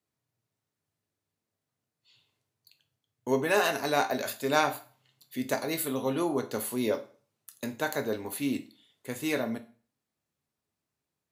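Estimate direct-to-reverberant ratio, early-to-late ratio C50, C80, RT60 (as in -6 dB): 8.0 dB, 15.5 dB, 19.5 dB, 0.40 s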